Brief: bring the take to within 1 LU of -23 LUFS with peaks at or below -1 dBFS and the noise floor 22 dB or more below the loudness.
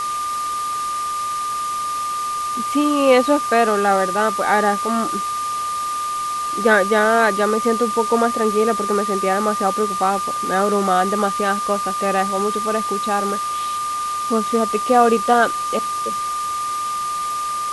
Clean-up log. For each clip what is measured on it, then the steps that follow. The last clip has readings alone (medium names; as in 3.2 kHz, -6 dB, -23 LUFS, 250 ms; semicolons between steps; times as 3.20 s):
steady tone 1.2 kHz; tone level -21 dBFS; noise floor -24 dBFS; noise floor target -41 dBFS; loudness -19.0 LUFS; peak level -1.5 dBFS; loudness target -23.0 LUFS
-> band-stop 1.2 kHz, Q 30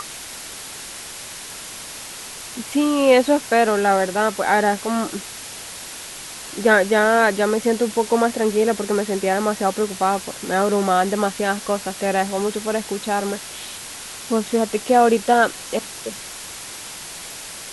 steady tone not found; noise floor -35 dBFS; noise floor target -42 dBFS
-> noise print and reduce 7 dB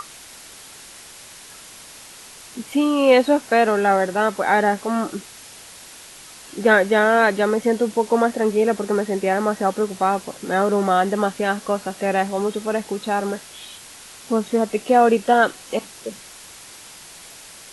noise floor -42 dBFS; loudness -19.5 LUFS; peak level -2.5 dBFS; loudness target -23.0 LUFS
-> trim -3.5 dB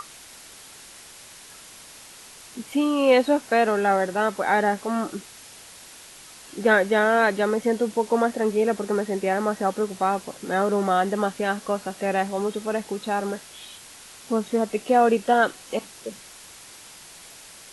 loudness -23.0 LUFS; peak level -6.0 dBFS; noise floor -46 dBFS